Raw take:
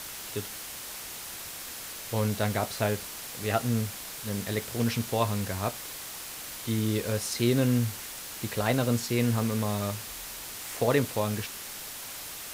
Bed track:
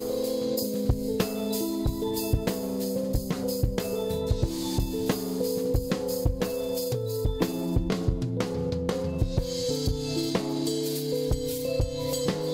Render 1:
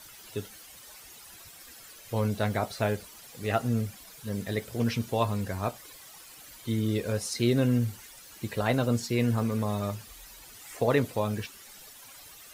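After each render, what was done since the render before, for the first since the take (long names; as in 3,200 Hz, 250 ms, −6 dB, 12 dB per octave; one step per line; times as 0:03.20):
broadband denoise 13 dB, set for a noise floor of −40 dBFS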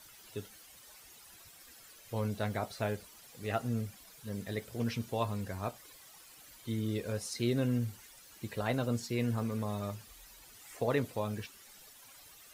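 level −6.5 dB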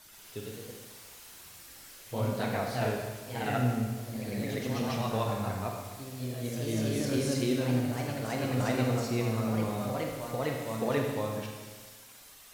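delay with pitch and tempo change per echo 126 ms, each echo +1 semitone, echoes 3
four-comb reverb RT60 1.4 s, combs from 32 ms, DRR 1 dB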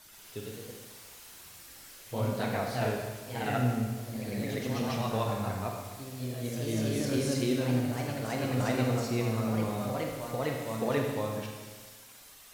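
no processing that can be heard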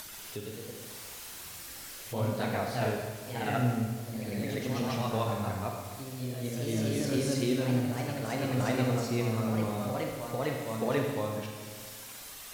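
upward compression, threshold −36 dBFS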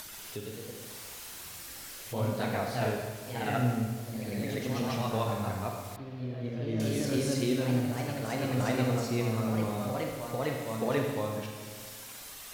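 0:05.96–0:06.80: high-frequency loss of the air 320 metres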